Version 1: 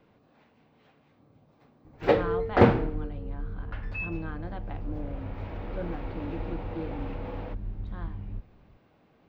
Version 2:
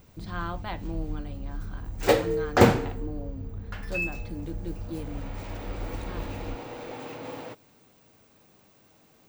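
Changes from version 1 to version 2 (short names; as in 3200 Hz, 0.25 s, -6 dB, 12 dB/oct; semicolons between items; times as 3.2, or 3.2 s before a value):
speech: entry -1.85 s; master: remove air absorption 340 m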